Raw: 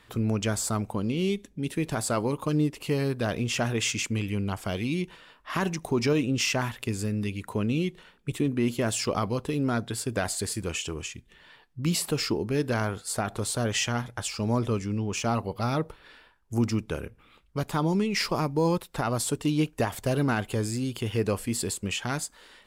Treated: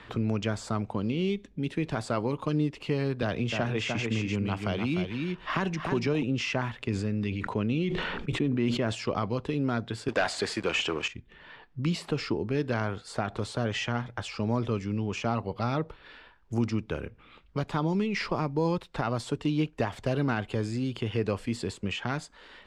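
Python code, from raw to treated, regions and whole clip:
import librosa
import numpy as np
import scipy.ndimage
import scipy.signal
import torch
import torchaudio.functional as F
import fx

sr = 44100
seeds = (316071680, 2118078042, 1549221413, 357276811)

y = fx.chain(x, sr, fx.echo_single(ms=300, db=-6.5),
    fx.band_squash(depth_pct=40), at=(3.22, 6.23))
y = fx.chain(y, sr, fx.peak_eq(hz=13000.0, db=-7.0, octaves=0.88),
    fx.sustainer(db_per_s=29.0), at=(6.85, 8.95))
y = fx.chain(y, sr, fx.weighting(curve='A'),
    fx.leveller(passes=3), at=(10.08, 11.08))
y = scipy.signal.sosfilt(scipy.signal.butter(2, 3900.0, 'lowpass', fs=sr, output='sos'), y)
y = fx.band_squash(y, sr, depth_pct=40)
y = y * 10.0 ** (-2.0 / 20.0)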